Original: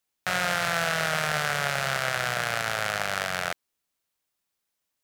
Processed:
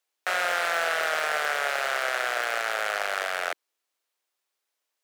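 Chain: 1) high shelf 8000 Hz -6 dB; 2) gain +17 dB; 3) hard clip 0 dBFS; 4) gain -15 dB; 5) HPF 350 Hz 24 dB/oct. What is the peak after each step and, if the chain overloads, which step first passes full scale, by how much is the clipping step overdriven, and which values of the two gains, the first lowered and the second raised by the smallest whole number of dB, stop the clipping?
-9.0, +8.0, 0.0, -15.0, -11.5 dBFS; step 2, 8.0 dB; step 2 +9 dB, step 4 -7 dB

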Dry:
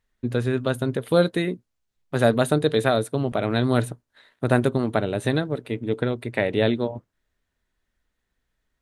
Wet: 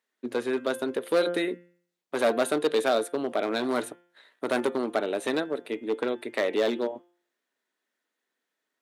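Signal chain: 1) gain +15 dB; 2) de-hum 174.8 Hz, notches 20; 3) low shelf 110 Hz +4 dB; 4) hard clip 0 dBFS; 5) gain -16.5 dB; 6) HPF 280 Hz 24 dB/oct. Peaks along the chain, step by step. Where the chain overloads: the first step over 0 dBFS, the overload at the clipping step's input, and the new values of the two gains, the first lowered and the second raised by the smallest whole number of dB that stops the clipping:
+10.5, +10.0, +9.5, 0.0, -16.5, -10.5 dBFS; step 1, 9.5 dB; step 1 +5 dB, step 5 -6.5 dB

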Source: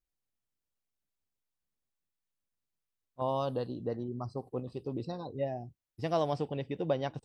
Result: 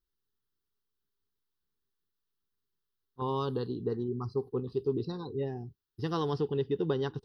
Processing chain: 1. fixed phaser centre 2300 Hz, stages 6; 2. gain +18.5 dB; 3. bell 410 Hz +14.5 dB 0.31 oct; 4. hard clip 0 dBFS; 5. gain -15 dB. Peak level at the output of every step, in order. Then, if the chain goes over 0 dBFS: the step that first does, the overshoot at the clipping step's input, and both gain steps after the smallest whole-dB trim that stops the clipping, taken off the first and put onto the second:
-24.0, -5.5, -3.5, -3.5, -18.5 dBFS; no overload

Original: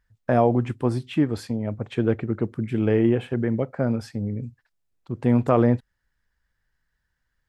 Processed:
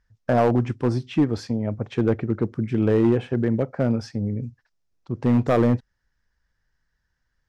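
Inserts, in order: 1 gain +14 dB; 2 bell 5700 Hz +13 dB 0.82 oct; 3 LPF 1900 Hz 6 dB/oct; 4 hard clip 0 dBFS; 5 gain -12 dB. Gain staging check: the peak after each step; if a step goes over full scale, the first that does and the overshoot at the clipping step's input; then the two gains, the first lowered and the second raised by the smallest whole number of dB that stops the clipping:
+8.5, +8.5, +8.0, 0.0, -12.0 dBFS; step 1, 8.0 dB; step 1 +6 dB, step 5 -4 dB

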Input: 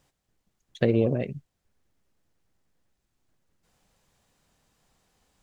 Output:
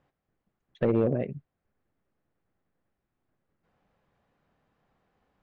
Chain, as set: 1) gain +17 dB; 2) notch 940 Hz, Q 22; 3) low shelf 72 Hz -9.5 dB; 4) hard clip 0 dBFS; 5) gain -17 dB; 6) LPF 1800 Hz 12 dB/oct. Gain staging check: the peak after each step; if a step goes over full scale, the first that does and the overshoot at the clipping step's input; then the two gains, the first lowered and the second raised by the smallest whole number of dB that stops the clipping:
+9.0, +9.0, +8.0, 0.0, -17.0, -16.5 dBFS; step 1, 8.0 dB; step 1 +9 dB, step 5 -9 dB

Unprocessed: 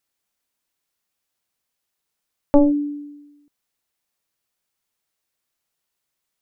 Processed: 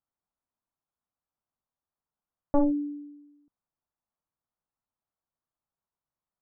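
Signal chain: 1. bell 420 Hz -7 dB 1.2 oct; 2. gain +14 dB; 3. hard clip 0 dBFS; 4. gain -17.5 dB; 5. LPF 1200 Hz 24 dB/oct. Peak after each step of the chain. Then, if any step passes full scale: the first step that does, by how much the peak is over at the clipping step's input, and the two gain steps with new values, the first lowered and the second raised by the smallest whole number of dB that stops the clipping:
-7.0, +7.0, 0.0, -17.5, -16.5 dBFS; step 2, 7.0 dB; step 2 +7 dB, step 4 -10.5 dB

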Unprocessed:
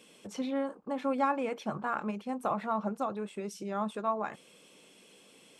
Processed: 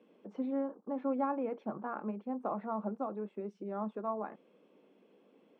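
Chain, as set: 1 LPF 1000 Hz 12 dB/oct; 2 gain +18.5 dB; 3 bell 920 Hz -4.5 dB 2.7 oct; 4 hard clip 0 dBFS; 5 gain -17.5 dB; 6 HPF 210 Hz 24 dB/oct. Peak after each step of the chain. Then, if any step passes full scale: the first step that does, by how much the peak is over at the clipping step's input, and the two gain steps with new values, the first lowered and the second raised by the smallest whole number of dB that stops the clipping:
-20.0, -1.5, -5.5, -5.5, -23.0, -22.5 dBFS; no overload

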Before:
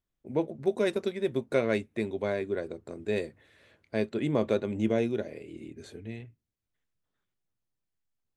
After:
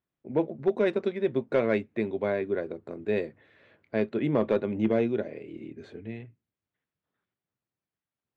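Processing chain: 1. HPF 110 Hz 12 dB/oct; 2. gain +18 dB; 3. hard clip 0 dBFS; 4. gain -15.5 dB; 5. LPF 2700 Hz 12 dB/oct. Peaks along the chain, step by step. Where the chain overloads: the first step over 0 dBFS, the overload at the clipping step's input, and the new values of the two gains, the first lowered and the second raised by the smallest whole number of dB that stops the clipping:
-12.5, +5.5, 0.0, -15.5, -15.0 dBFS; step 2, 5.5 dB; step 2 +12 dB, step 4 -9.5 dB

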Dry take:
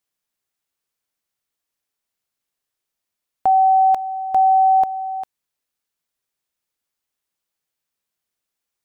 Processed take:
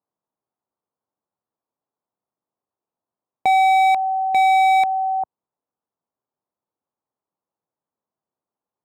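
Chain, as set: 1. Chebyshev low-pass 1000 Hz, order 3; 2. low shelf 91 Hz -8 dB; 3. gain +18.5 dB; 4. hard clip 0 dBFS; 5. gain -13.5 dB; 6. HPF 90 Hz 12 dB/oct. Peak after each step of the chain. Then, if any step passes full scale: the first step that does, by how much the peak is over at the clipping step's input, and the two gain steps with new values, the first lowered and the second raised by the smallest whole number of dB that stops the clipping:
-10.5, -10.5, +8.0, 0.0, -13.5, -11.0 dBFS; step 3, 8.0 dB; step 3 +10.5 dB, step 5 -5.5 dB

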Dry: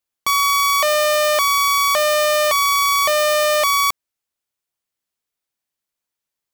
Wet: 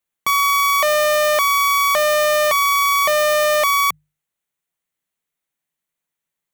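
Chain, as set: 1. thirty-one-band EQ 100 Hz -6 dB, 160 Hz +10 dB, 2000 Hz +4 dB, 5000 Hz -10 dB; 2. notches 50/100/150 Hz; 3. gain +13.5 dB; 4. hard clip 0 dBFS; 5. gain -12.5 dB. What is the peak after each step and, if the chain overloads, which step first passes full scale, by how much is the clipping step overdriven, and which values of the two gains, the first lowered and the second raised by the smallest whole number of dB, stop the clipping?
-9.5, -9.5, +4.0, 0.0, -12.5 dBFS; step 3, 4.0 dB; step 3 +9.5 dB, step 5 -8.5 dB

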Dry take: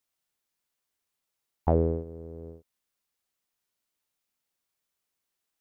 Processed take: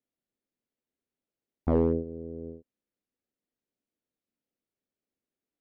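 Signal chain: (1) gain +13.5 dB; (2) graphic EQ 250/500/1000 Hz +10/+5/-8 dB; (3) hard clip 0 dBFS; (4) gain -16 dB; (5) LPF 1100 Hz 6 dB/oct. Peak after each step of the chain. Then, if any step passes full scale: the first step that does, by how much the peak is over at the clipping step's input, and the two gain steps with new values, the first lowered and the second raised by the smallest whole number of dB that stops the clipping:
+3.5, +8.0, 0.0, -16.0, -16.0 dBFS; step 1, 8.0 dB; step 1 +5.5 dB, step 4 -8 dB

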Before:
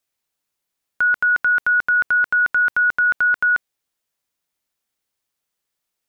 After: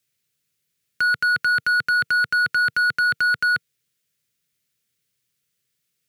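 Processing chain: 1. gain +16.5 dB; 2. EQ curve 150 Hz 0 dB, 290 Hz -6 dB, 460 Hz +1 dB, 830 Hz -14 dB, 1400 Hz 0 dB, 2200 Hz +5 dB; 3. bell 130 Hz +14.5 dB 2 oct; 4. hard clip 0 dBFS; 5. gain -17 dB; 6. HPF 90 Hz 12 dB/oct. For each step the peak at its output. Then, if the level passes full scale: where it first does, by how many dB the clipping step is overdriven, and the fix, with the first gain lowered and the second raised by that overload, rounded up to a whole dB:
+3.5, +4.5, +5.5, 0.0, -17.0, -15.5 dBFS; step 1, 5.5 dB; step 1 +10.5 dB, step 5 -11 dB

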